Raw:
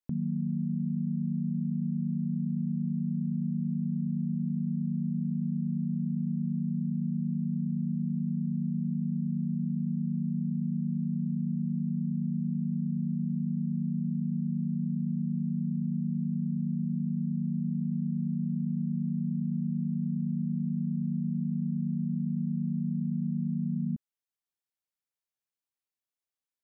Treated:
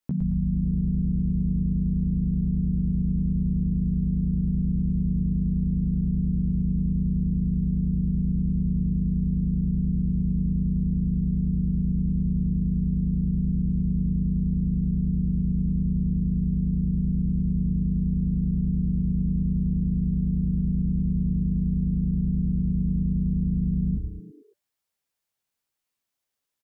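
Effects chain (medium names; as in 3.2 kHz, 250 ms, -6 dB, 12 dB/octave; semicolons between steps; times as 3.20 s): doubling 15 ms -4 dB; on a send: frequency-shifting echo 111 ms, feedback 43%, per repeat -120 Hz, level -3.5 dB; on the sum: trim +5.5 dB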